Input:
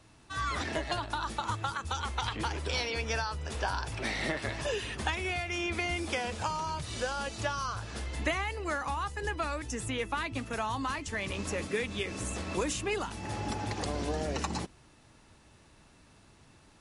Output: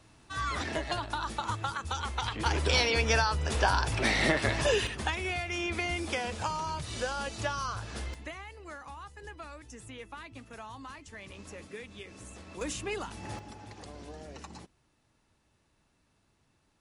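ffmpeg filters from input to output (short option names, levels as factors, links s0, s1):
-af "asetnsamples=n=441:p=0,asendcmd='2.46 volume volume 6.5dB;4.87 volume volume 0dB;8.14 volume volume -11.5dB;12.61 volume volume -3dB;13.39 volume volume -12.5dB',volume=1"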